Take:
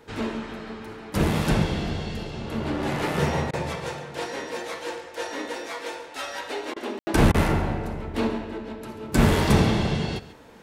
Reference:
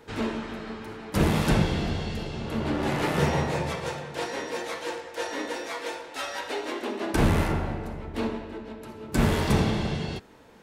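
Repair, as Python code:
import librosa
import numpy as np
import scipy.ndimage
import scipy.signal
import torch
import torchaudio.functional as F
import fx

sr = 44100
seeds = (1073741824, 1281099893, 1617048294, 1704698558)

y = fx.fix_ambience(x, sr, seeds[0], print_start_s=10.11, print_end_s=10.61, start_s=6.99, end_s=7.07)
y = fx.fix_interpolate(y, sr, at_s=(3.51, 6.74, 7.32), length_ms=22.0)
y = fx.fix_echo_inverse(y, sr, delay_ms=139, level_db=-16.5)
y = fx.gain(y, sr, db=fx.steps((0.0, 0.0), (7.01, -4.0)))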